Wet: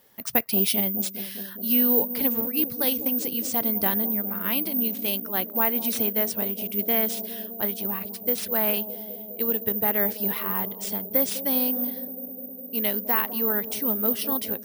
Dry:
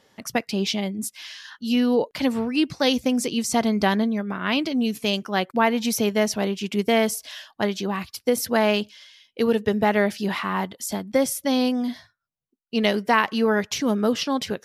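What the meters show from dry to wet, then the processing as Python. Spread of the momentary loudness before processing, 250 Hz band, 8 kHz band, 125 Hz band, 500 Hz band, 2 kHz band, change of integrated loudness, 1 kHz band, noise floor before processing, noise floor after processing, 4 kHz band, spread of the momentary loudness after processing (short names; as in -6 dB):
8 LU, -7.0 dB, -3.0 dB, n/a, -7.5 dB, -8.0 dB, 0.0 dB, -8.0 dB, -73 dBFS, -40 dBFS, -6.5 dB, 8 LU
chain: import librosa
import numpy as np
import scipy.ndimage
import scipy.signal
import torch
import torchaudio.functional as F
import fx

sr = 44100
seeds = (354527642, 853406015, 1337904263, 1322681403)

p1 = fx.rider(x, sr, range_db=10, speed_s=2.0)
p2 = p1 + fx.echo_bbd(p1, sr, ms=204, stages=1024, feedback_pct=83, wet_db=-13, dry=0)
p3 = (np.kron(p2[::3], np.eye(3)[0]) * 3)[:len(p2)]
y = p3 * librosa.db_to_amplitude(-8.0)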